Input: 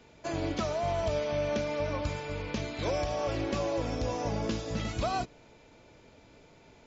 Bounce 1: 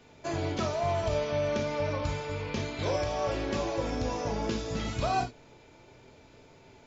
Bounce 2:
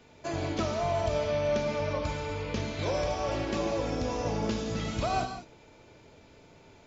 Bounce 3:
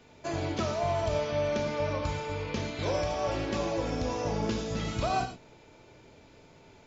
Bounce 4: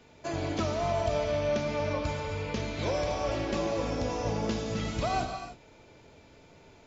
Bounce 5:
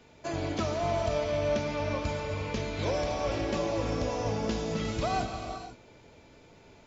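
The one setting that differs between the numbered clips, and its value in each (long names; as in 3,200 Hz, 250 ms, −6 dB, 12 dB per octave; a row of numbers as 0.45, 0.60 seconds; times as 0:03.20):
reverb whose tail is shaped and stops, gate: 80, 220, 140, 330, 530 milliseconds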